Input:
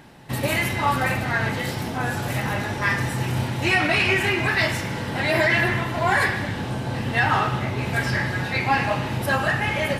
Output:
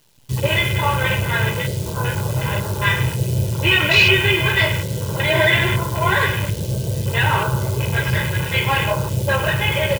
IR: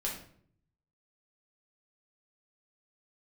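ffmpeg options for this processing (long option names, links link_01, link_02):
-filter_complex "[0:a]afwtdn=0.0501,highpass=48,bass=frequency=250:gain=5,treble=frequency=4000:gain=-8,aecho=1:1:2:0.95,acrusher=bits=8:dc=4:mix=0:aa=0.000001,aexciter=amount=4.5:drive=4.7:freq=2700,asplit=2[link_01][link_02];[1:a]atrim=start_sample=2205,lowpass=8200[link_03];[link_02][link_03]afir=irnorm=-1:irlink=0,volume=-12.5dB[link_04];[link_01][link_04]amix=inputs=2:normalize=0,volume=-1.5dB"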